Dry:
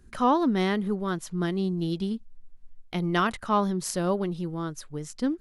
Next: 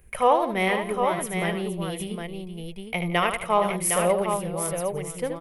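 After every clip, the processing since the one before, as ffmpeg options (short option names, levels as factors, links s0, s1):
-filter_complex "[0:a]firequalizer=gain_entry='entry(150,0);entry(270,-14);entry(480,8);entry(1500,-4);entry(2200,13);entry(4100,-8);entry(7000,-3);entry(10000,13)':delay=0.05:min_phase=1,asplit=2[s0][s1];[s1]aecho=0:1:75|171|469|760:0.422|0.126|0.237|0.531[s2];[s0][s2]amix=inputs=2:normalize=0"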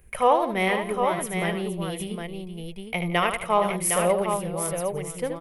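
-af anull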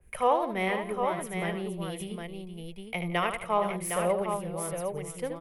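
-filter_complex "[0:a]acrossover=split=170|490|3400[s0][s1][s2][s3];[s3]asoftclip=type=hard:threshold=0.0841[s4];[s0][s1][s2][s4]amix=inputs=4:normalize=0,adynamicequalizer=threshold=0.0112:dfrequency=2600:dqfactor=0.7:tfrequency=2600:tqfactor=0.7:attack=5:release=100:ratio=0.375:range=2.5:mode=cutabove:tftype=highshelf,volume=0.562"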